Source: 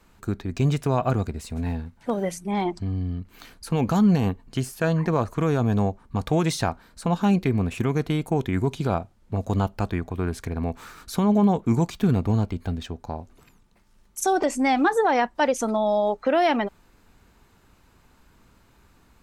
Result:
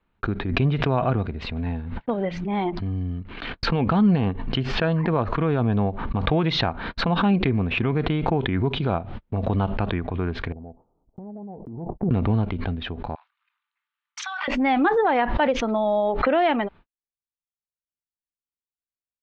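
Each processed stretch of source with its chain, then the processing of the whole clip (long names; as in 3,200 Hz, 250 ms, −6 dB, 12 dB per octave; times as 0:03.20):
0:10.52–0:12.11: Butterworth low-pass 820 Hz 48 dB per octave + downward compressor, threshold −33 dBFS + low-shelf EQ 360 Hz −4.5 dB
0:13.15–0:14.48: Butterworth high-pass 1,100 Hz + transient designer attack 0 dB, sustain +7 dB
whole clip: noise gate −44 dBFS, range −54 dB; Butterworth low-pass 3,600 Hz 36 dB per octave; background raised ahead of every attack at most 43 dB per second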